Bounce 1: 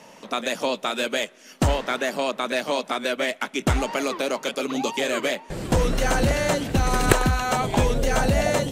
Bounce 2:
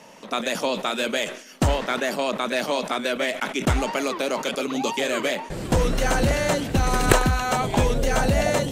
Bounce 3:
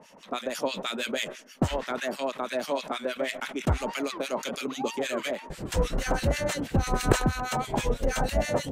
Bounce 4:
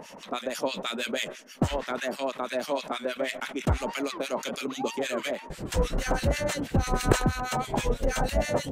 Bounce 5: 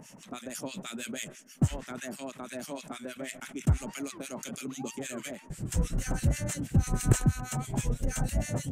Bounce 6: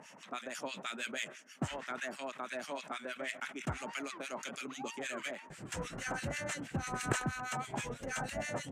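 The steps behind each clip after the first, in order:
sustainer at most 100 dB/s
harmonic tremolo 6.2 Hz, depth 100%, crossover 1300 Hz; gain -1.5 dB
upward compressor, threshold -37 dBFS
graphic EQ 125/500/1000/2000/4000/8000 Hz +8/-9/-8/-3/-9/+7 dB; gain -2.5 dB
band-pass 1500 Hz, Q 0.69; gain +4 dB

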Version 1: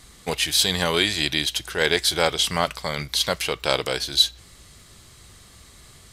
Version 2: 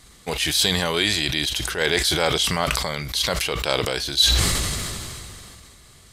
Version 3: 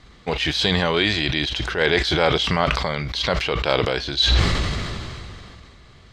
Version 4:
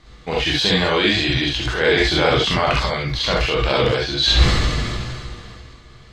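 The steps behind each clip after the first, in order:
sustainer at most 22 dB/s; gain -1.5 dB
air absorption 200 m; gain +4 dB
non-linear reverb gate 90 ms rising, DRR -3 dB; gain -2 dB

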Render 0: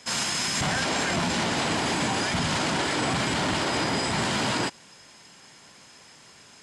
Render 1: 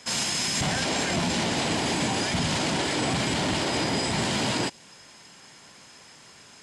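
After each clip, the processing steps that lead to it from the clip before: dynamic EQ 1300 Hz, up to -6 dB, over -44 dBFS, Q 1.4; gain +1 dB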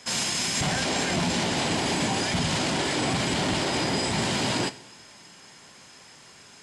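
two-slope reverb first 0.62 s, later 2.9 s, DRR 12.5 dB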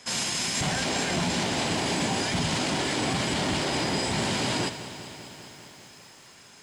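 lo-fi delay 0.198 s, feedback 80%, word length 8-bit, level -14 dB; gain -1.5 dB

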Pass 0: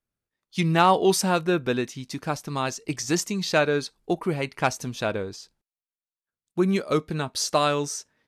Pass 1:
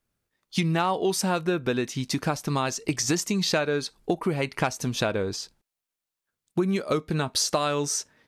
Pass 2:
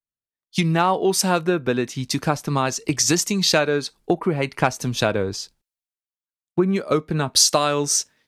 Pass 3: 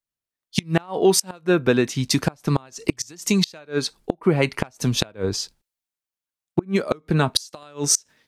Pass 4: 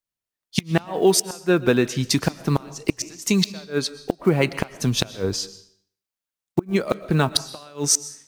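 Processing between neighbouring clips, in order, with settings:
compressor 6:1, threshold -30 dBFS, peak gain reduction 15.5 dB; gain +8 dB
three-band expander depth 70%; gain +5 dB
flipped gate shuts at -8 dBFS, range -28 dB; gain +3.5 dB
block floating point 7-bit; reverb RT60 0.60 s, pre-delay 85 ms, DRR 16 dB

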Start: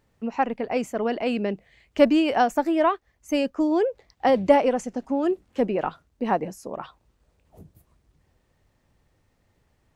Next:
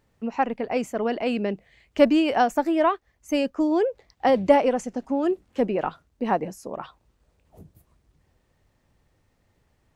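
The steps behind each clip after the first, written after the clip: nothing audible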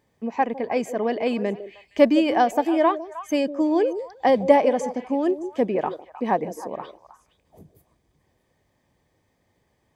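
notch comb 1400 Hz; delay with a stepping band-pass 0.155 s, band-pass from 420 Hz, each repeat 1.4 oct, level -9 dB; gain +1.5 dB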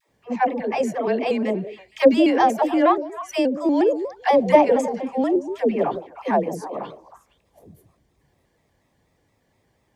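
dispersion lows, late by 95 ms, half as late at 470 Hz; shaped vibrato square 4.2 Hz, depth 100 cents; gain +2 dB

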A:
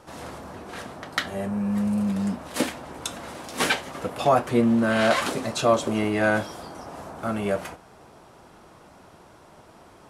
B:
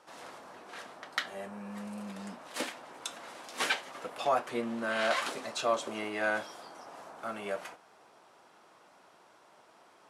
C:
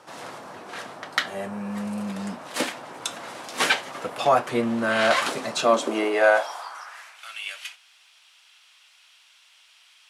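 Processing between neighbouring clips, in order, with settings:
weighting filter A; gain -7.5 dB
high-pass sweep 110 Hz -> 2900 Hz, 5.37–7.26; gain +9 dB

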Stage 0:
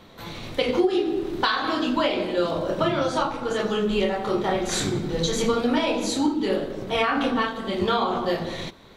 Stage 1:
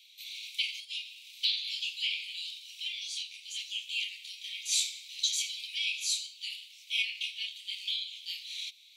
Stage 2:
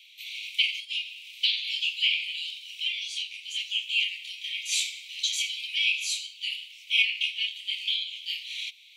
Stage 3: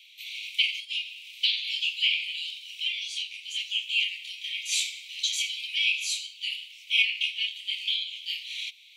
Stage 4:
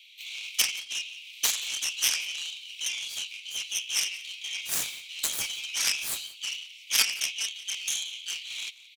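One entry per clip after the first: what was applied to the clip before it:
steep high-pass 2300 Hz 96 dB/oct
band shelf 2400 Hz +9 dB 1 oct
nothing audible
self-modulated delay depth 0.23 ms; echo 0.176 s -20.5 dB

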